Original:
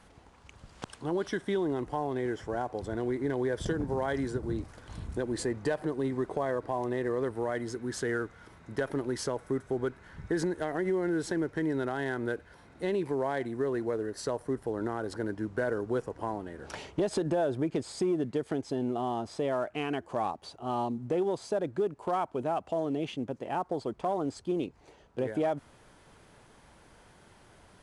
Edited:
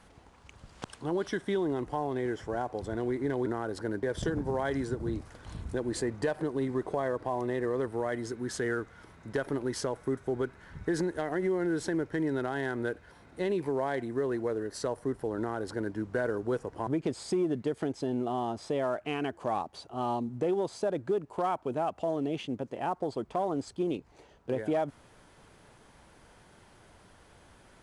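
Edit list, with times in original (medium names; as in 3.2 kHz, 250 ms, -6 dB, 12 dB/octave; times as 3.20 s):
14.81–15.38 s: copy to 3.46 s
16.30–17.56 s: delete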